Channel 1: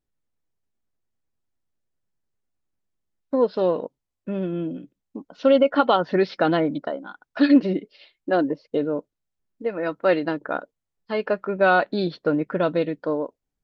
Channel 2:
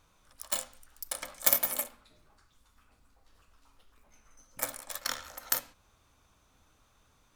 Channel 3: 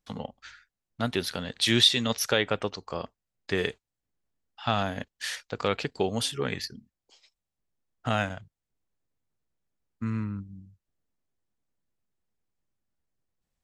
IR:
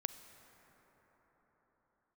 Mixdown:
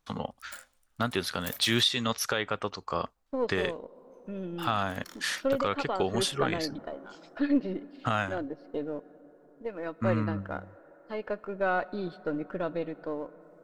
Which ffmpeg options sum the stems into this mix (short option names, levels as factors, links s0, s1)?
-filter_complex "[0:a]aeval=exprs='if(lt(val(0),0),0.708*val(0),val(0))':c=same,acrossover=split=2700[s0][s1];[s1]acompressor=threshold=0.00562:ratio=4:attack=1:release=60[s2];[s0][s2]amix=inputs=2:normalize=0,volume=0.224,asplit=3[s3][s4][s5];[s4]volume=0.668[s6];[1:a]volume=0.168,asplit=2[s7][s8];[s8]volume=0.119[s9];[2:a]equalizer=f=1200:t=o:w=0.77:g=7.5,volume=1.12[s10];[s5]apad=whole_len=324405[s11];[s7][s11]sidechaincompress=threshold=0.00631:ratio=8:attack=16:release=294[s12];[3:a]atrim=start_sample=2205[s13];[s6][s9]amix=inputs=2:normalize=0[s14];[s14][s13]afir=irnorm=-1:irlink=0[s15];[s3][s12][s10][s15]amix=inputs=4:normalize=0,alimiter=limit=0.211:level=0:latency=1:release=481"